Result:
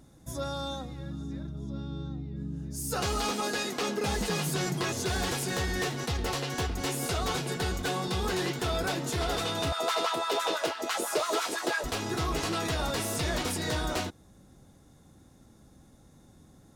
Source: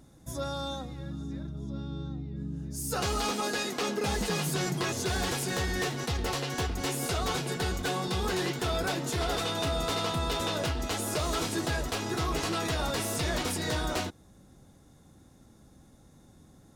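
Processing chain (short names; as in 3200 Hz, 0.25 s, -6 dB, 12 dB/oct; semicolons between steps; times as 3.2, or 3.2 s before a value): 9.72–11.84 LFO high-pass sine 6 Hz 350–1500 Hz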